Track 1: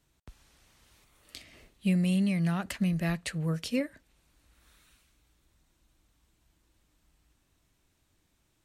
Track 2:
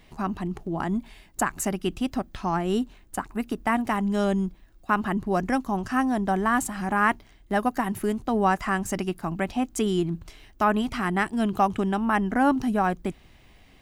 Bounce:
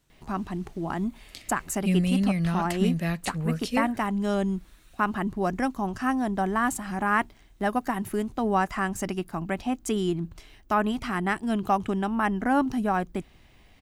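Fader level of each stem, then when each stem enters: +2.0, -2.0 dB; 0.00, 0.10 s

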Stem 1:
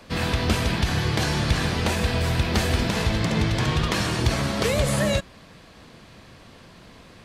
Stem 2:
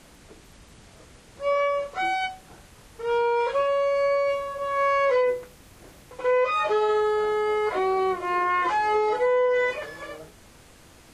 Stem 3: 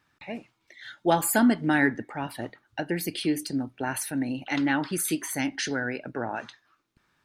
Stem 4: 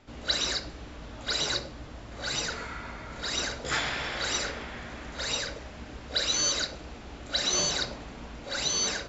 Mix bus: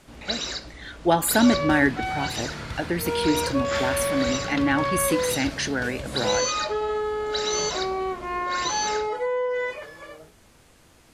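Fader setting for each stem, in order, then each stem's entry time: -13.5, -4.0, +2.5, -1.5 dB; 1.20, 0.00, 0.00, 0.00 s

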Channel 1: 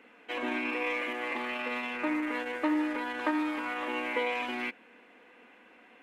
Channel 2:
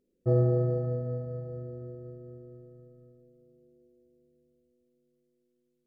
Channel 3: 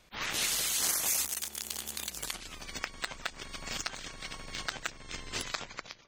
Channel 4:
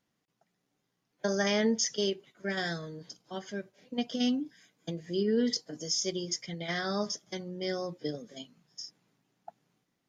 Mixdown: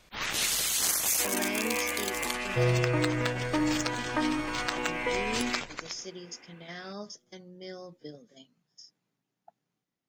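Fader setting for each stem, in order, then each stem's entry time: 0.0, -2.5, +2.5, -9.0 dB; 0.90, 2.30, 0.00, 0.00 s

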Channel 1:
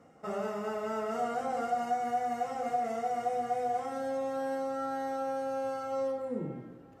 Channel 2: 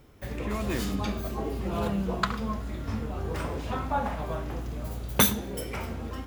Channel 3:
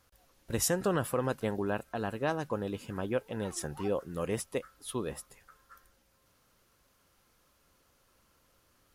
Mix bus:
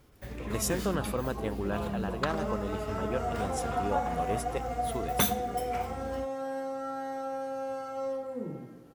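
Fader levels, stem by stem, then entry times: -1.5, -5.5, -2.0 dB; 2.05, 0.00, 0.00 s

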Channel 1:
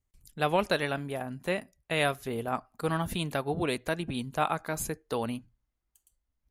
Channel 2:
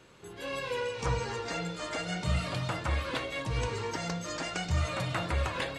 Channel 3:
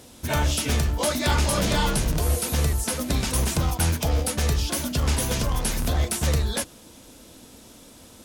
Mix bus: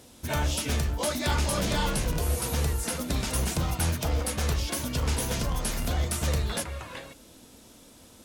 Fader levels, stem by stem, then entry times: -19.0, -7.0, -4.5 dB; 0.00, 1.35, 0.00 s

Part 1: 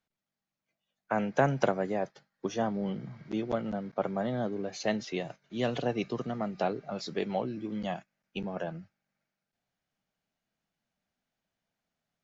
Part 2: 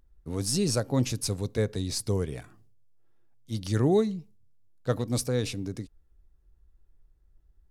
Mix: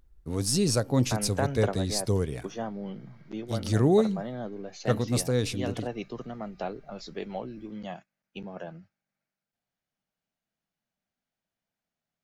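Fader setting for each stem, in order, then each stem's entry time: -4.0, +1.5 dB; 0.00, 0.00 s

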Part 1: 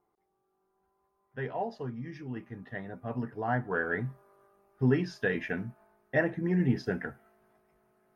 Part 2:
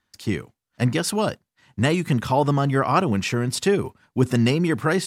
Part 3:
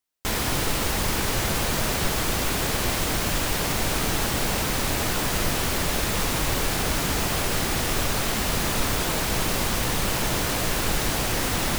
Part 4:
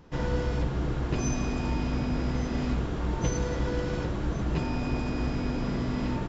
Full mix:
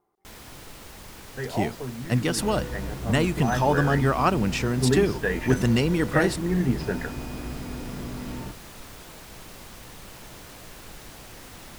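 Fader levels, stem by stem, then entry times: +3.0, -2.5, -19.0, -5.5 dB; 0.00, 1.30, 0.00, 2.25 s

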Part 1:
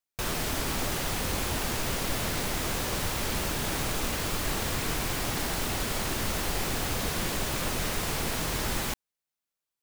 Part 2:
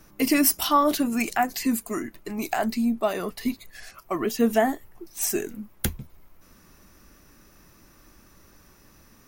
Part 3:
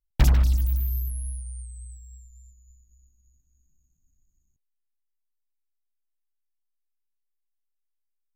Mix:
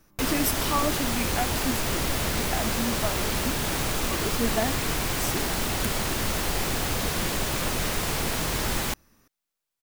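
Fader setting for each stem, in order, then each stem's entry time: +3.0, -7.0, -17.0 dB; 0.00, 0.00, 1.80 s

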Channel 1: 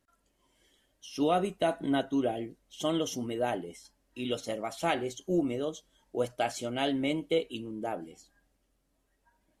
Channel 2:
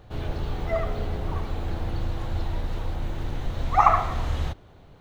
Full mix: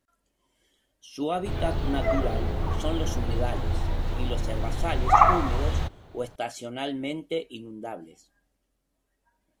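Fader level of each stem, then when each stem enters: -1.5, +1.0 dB; 0.00, 1.35 s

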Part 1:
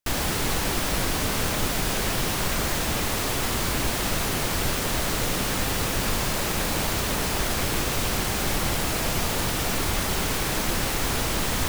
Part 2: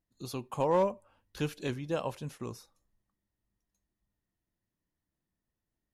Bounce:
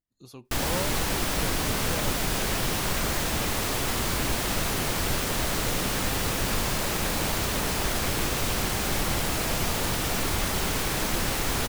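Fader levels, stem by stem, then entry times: -1.5, -7.0 dB; 0.45, 0.00 s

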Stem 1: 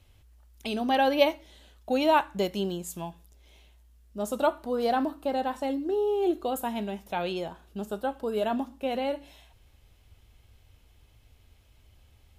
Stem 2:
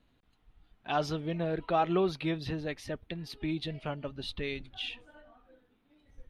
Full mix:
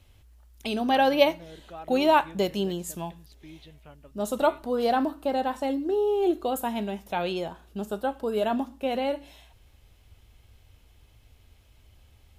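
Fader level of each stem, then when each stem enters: +2.0, -14.0 dB; 0.00, 0.00 s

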